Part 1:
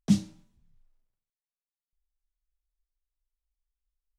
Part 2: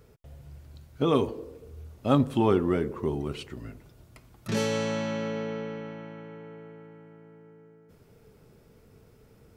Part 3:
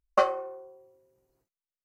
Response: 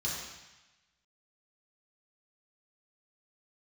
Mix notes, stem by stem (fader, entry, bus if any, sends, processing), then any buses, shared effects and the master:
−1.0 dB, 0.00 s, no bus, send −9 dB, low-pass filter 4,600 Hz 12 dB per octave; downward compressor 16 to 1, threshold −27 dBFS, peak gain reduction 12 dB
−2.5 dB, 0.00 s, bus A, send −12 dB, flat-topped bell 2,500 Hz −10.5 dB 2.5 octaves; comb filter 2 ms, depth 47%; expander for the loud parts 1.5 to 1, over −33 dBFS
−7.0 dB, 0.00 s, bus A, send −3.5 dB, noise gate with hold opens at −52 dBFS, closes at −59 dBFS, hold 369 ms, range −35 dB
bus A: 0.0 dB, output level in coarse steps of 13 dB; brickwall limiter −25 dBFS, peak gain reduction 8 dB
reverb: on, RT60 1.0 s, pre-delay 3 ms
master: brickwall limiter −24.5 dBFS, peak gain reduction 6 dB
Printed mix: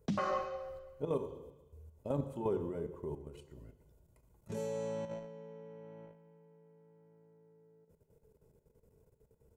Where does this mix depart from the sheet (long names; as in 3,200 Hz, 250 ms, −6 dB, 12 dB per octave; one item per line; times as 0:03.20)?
stem 1: send off
stem 3 −7.0 dB → −0.5 dB
reverb return −9.5 dB